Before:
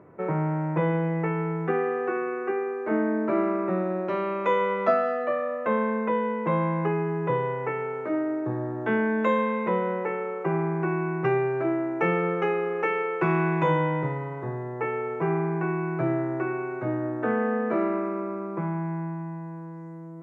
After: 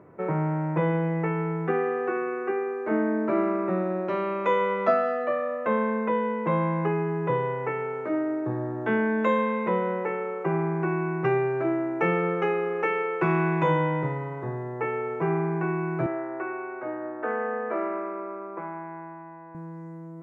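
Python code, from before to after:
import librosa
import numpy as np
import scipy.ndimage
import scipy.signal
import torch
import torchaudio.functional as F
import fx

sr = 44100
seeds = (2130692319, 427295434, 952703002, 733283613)

y = fx.bandpass_edges(x, sr, low_hz=450.0, high_hz=2500.0, at=(16.06, 19.55))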